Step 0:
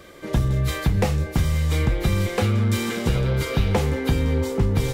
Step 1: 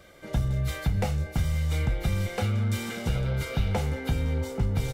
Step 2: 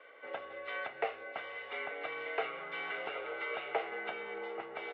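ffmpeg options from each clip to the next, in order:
-af "aecho=1:1:1.4:0.41,volume=-7.5dB"
-af "highpass=f=550:t=q:w=0.5412,highpass=f=550:t=q:w=1.307,lowpass=f=2.9k:t=q:w=0.5176,lowpass=f=2.9k:t=q:w=0.7071,lowpass=f=2.9k:t=q:w=1.932,afreqshift=-56"

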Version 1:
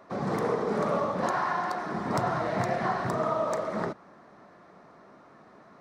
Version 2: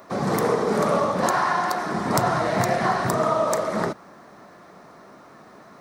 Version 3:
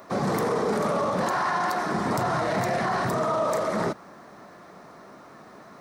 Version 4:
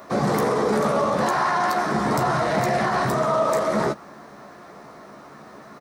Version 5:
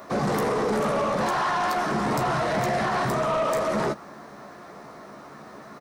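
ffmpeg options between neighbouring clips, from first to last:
-af "aemphasis=mode=production:type=50fm,volume=6.5dB"
-af "alimiter=limit=-17.5dB:level=0:latency=1:release=10"
-filter_complex "[0:a]asplit=2[a][b];[b]adelay=14,volume=-7dB[c];[a][c]amix=inputs=2:normalize=0,volume=3dB"
-af "asoftclip=type=tanh:threshold=-19.5dB"

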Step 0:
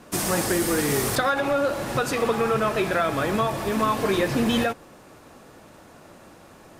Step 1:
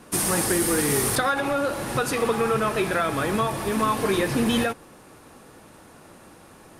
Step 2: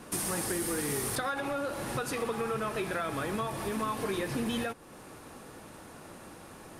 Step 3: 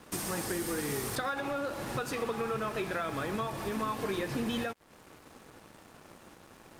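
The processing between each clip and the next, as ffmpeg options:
-af "superequalizer=8b=0.708:16b=2"
-af "acompressor=threshold=-38dB:ratio=2"
-af "equalizer=f=10k:t=o:w=0.29:g=-9,aeval=exprs='sgn(val(0))*max(abs(val(0))-0.00266,0)':c=same"

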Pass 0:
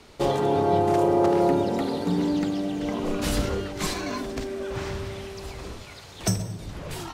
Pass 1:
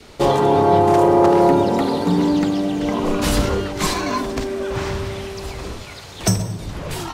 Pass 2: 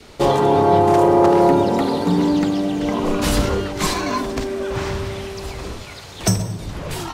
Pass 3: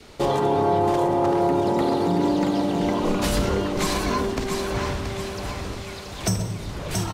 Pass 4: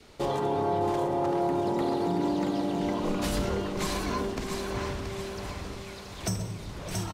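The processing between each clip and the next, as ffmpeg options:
-af "adynamicequalizer=threshold=0.00794:dfrequency=1000:dqfactor=3.3:tfrequency=1000:tqfactor=3.3:attack=5:release=100:ratio=0.375:range=3:mode=boostabove:tftype=bell,acontrast=87"
-af anull
-filter_complex "[0:a]asplit=2[a][b];[b]aecho=0:1:678|1356|2034|2712|3390:0.447|0.192|0.0826|0.0355|0.0153[c];[a][c]amix=inputs=2:normalize=0,alimiter=limit=-9.5dB:level=0:latency=1:release=130,volume=-3dB"
-af "aecho=1:1:612:0.237,volume=-7dB"

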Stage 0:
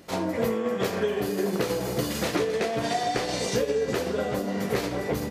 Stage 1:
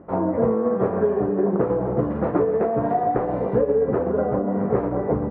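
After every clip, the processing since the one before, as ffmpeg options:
-af "lowpass=f=1.2k:w=0.5412,lowpass=f=1.2k:w=1.3066,volume=6dB"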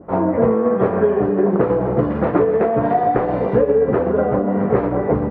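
-af "adynamicequalizer=threshold=0.01:dfrequency=1700:dqfactor=0.7:tfrequency=1700:tqfactor=0.7:attack=5:release=100:ratio=0.375:range=4:mode=boostabove:tftype=highshelf,volume=4.5dB"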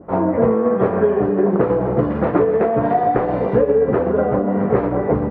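-af anull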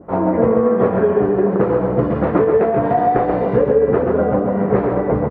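-af "aecho=1:1:134:0.531"

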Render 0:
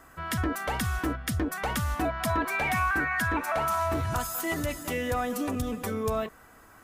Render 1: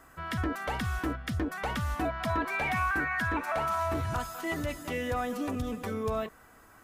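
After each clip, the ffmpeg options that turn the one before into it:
-filter_complex "[0:a]acrossover=split=4900[a][b];[b]acompressor=threshold=-46dB:ratio=4:attack=1:release=60[c];[a][c]amix=inputs=2:normalize=0,volume=-2.5dB"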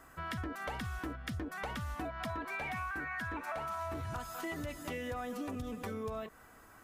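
-af "acompressor=threshold=-35dB:ratio=6,volume=-1.5dB"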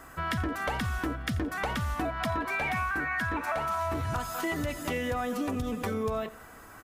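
-af "aecho=1:1:86|172|258:0.112|0.0494|0.0217,volume=8.5dB"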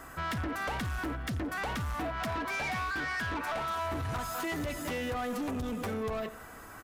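-af "asoftclip=type=tanh:threshold=-32dB,volume=1.5dB"

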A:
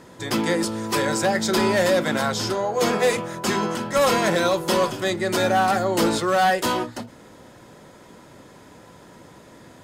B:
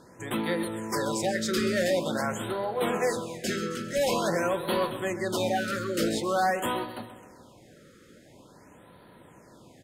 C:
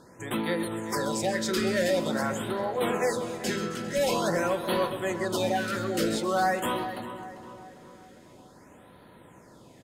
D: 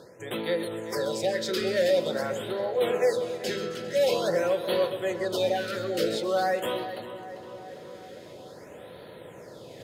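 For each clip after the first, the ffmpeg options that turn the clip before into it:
-filter_complex "[0:a]asplit=2[a][b];[b]aecho=0:1:132|264|396|528|660|792:0.224|0.123|0.0677|0.0372|0.0205|0.0113[c];[a][c]amix=inputs=2:normalize=0,afftfilt=real='re*(1-between(b*sr/1024,780*pow(6600/780,0.5+0.5*sin(2*PI*0.47*pts/sr))/1.41,780*pow(6600/780,0.5+0.5*sin(2*PI*0.47*pts/sr))*1.41))':imag='im*(1-between(b*sr/1024,780*pow(6600/780,0.5+0.5*sin(2*PI*0.47*pts/sr))/1.41,780*pow(6600/780,0.5+0.5*sin(2*PI*0.47*pts/sr))*1.41))':win_size=1024:overlap=0.75,volume=-6.5dB"
-filter_complex "[0:a]asplit=2[a][b];[b]adelay=397,lowpass=f=2.2k:p=1,volume=-11dB,asplit=2[c][d];[d]adelay=397,lowpass=f=2.2k:p=1,volume=0.52,asplit=2[e][f];[f]adelay=397,lowpass=f=2.2k:p=1,volume=0.52,asplit=2[g][h];[h]adelay=397,lowpass=f=2.2k:p=1,volume=0.52,asplit=2[i][j];[j]adelay=397,lowpass=f=2.2k:p=1,volume=0.52,asplit=2[k][l];[l]adelay=397,lowpass=f=2.2k:p=1,volume=0.52[m];[a][c][e][g][i][k][m]amix=inputs=7:normalize=0"
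-af "highpass=96,areverse,acompressor=mode=upward:threshold=-34dB:ratio=2.5,areverse,equalizer=f=250:t=o:w=1:g=-8,equalizer=f=500:t=o:w=1:g=9,equalizer=f=1k:t=o:w=1:g=-7,equalizer=f=4k:t=o:w=1:g=5,equalizer=f=8k:t=o:w=1:g=-6,volume=-1.5dB"

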